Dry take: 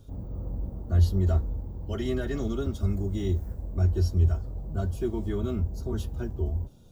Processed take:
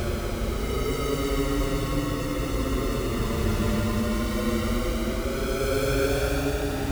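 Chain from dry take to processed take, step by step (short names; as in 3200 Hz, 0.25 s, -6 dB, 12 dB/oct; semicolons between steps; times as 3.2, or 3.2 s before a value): decimation with a swept rate 37×, swing 100% 0.93 Hz; Paulstretch 17×, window 0.10 s, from 2.25; gain +3 dB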